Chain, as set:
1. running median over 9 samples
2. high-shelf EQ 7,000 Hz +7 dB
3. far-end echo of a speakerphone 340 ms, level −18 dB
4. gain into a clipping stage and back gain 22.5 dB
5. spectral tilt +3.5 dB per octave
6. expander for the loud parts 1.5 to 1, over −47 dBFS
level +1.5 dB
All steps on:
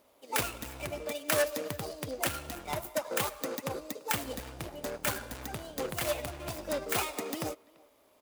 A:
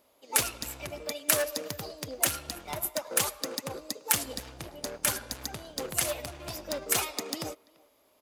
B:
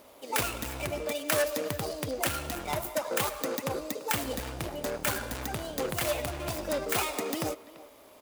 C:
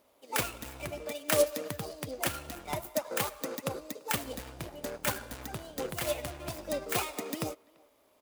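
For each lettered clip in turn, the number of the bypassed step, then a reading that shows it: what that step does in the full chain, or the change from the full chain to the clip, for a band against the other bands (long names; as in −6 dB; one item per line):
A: 1, change in momentary loudness spread +3 LU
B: 6, change in momentary loudness spread −3 LU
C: 4, distortion level −14 dB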